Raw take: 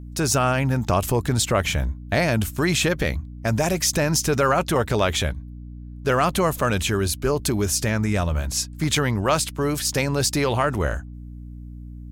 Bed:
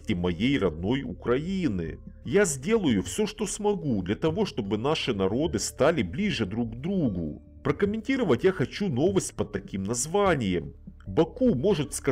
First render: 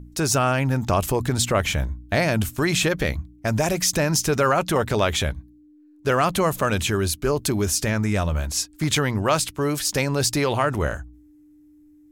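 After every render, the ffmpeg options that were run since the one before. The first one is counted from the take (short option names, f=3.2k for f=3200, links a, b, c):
-af "bandreject=f=60:t=h:w=4,bandreject=f=120:t=h:w=4,bandreject=f=180:t=h:w=4,bandreject=f=240:t=h:w=4"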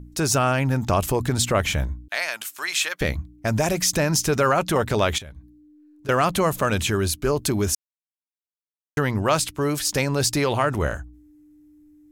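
-filter_complex "[0:a]asettb=1/sr,asplit=3[a][b][c];[a]atrim=end=2.084[d];[b]atrim=start=2.08:end=3.01,asetpts=PTS-STARTPTS,afade=t=in:d=0.004:c=qsin,afade=t=out:st=0.926:d=0.004:c=qsin,highpass=1.2k[e];[c]atrim=start=3.006[f];[d][e]acrossfade=d=0.004:c1=hsin:c2=qsin[g];[g][f]acrossfade=d=0.004:c1=qsin:c2=hsin,asettb=1/sr,asplit=3[h][i][j];[h]atrim=end=5.184[k];[i]atrim=start=5.18:end=6.09,asetpts=PTS-STARTPTS,afade=t=in:d=0.004:c=qsin,afade=t=out:st=0.906:d=0.004:c=qsin,acompressor=threshold=-37dB:ratio=6:attack=3.2:release=140:knee=1:detection=peak[l];[j]atrim=start=6.086[m];[k][l]acrossfade=d=0.004:c1=hsin:c2=qsin[n];[n][m]acrossfade=d=0.004:c1=qsin:c2=hsin,asplit=3[o][p][q];[o]atrim=end=7.75,asetpts=PTS-STARTPTS,afade=t=out:st=7.746:d=0.004:c=hsin[r];[p]atrim=start=7.75:end=8.97,asetpts=PTS-STARTPTS,volume=0[s];[q]atrim=start=8.97,asetpts=PTS-STARTPTS,afade=t=in:d=0.004:c=hsin[t];[r][s][t]concat=n=3:v=0:a=1"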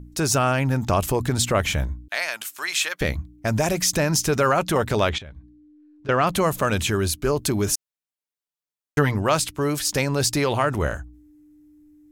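-filter_complex "[0:a]asettb=1/sr,asplit=3[a][b][c];[a]atrim=end=5.094[d];[b]atrim=start=5.09:end=6.27,asetpts=PTS-STARTPTS,afade=t=in:d=0.004:c=qsin,afade=t=out:st=1.176:d=0.004:c=qsin,lowpass=4.1k[e];[c]atrim=start=6.266[f];[d][e]acrossfade=d=0.004:c1=hsin:c2=qsin[g];[g][f]acrossfade=d=0.004:c1=qsin:c2=hsin,asettb=1/sr,asplit=3[h][i][j];[h]atrim=end=7.664[k];[i]atrim=start=7.66:end=9.15,asetpts=PTS-STARTPTS,afade=t=in:d=0.004:c=qsin,afade=t=out:st=1.486:d=0.004:c=qsin,aecho=1:1:6.8:0.65,atrim=end_sample=65709[l];[j]atrim=start=9.146[m];[k][l]acrossfade=d=0.004:c1=hsin:c2=qsin[n];[n][m]acrossfade=d=0.004:c1=qsin:c2=hsin"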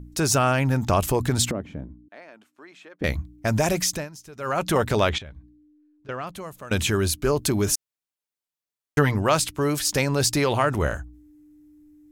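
-filter_complex "[0:a]asettb=1/sr,asplit=3[a][b][c];[a]atrim=end=1.514[d];[b]atrim=start=1.51:end=3.04,asetpts=PTS-STARTPTS,afade=t=in:d=0.004:c=qsin,afade=t=out:st=1.526:d=0.004:c=qsin,bandpass=f=260:t=q:w=1.8[e];[c]atrim=start=3.036[f];[d][e]acrossfade=d=0.004:c1=hsin:c2=qsin[g];[g][f]acrossfade=d=0.004:c1=qsin:c2=hsin,asplit=4[h][i][j][k];[h]atrim=end=4.1,asetpts=PTS-STARTPTS,afade=t=out:st=3.77:d=0.33:silence=0.0749894[l];[i]atrim=start=4.1:end=4.37,asetpts=PTS-STARTPTS,volume=-22.5dB[m];[j]atrim=start=4.37:end=6.71,asetpts=PTS-STARTPTS,afade=t=in:d=0.33:silence=0.0749894,afade=t=out:st=0.85:d=1.49:c=qua:silence=0.133352[n];[k]atrim=start=6.71,asetpts=PTS-STARTPTS,afade=t=in:d=0.004:c=hsin:silence=0.133352[o];[l][m][n][o]concat=n=4:v=0:a=1"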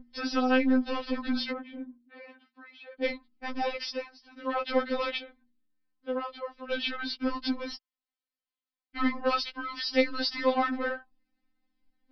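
-af "aresample=11025,asoftclip=type=tanh:threshold=-18dB,aresample=44100,afftfilt=real='re*3.46*eq(mod(b,12),0)':imag='im*3.46*eq(mod(b,12),0)':win_size=2048:overlap=0.75"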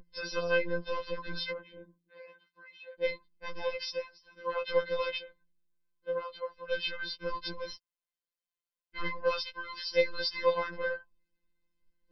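-af "afftfilt=real='hypot(re,im)*cos(PI*b)':imag='0':win_size=1024:overlap=0.75"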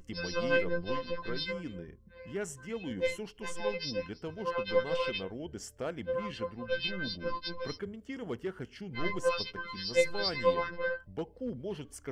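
-filter_complex "[1:a]volume=-15dB[a];[0:a][a]amix=inputs=2:normalize=0"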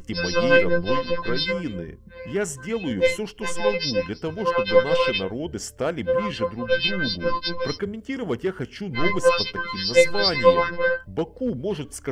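-af "volume=11.5dB,alimiter=limit=-1dB:level=0:latency=1"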